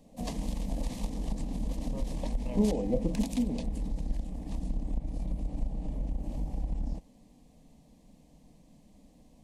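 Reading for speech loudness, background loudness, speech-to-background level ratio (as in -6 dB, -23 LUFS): -31.5 LUFS, -37.0 LUFS, 5.5 dB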